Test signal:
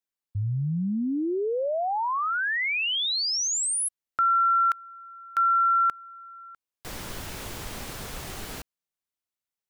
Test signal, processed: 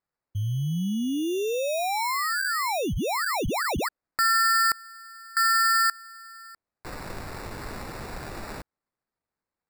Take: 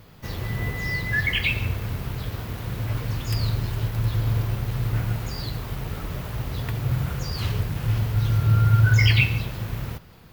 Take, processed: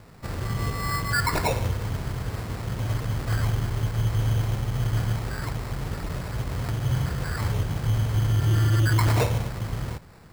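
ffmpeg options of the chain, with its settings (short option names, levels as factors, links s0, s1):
-af "acrusher=samples=14:mix=1:aa=0.000001,volume=7.5,asoftclip=hard,volume=0.133"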